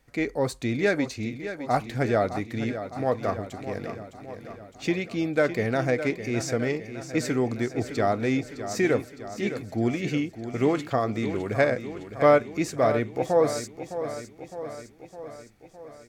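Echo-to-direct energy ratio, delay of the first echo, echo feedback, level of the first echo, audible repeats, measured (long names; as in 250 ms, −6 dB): −9.0 dB, 610 ms, 60%, −11.0 dB, 6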